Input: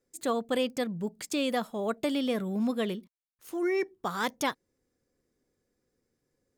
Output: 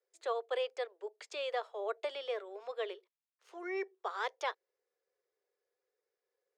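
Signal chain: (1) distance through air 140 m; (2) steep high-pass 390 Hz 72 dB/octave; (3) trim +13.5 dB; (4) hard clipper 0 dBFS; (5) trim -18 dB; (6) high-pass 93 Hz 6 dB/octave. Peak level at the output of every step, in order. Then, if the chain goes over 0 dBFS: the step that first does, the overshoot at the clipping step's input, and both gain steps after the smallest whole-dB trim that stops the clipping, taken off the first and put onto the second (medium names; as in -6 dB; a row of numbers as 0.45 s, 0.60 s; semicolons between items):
-17.5 dBFS, -18.0 dBFS, -4.5 dBFS, -4.5 dBFS, -22.5 dBFS, -22.5 dBFS; nothing clips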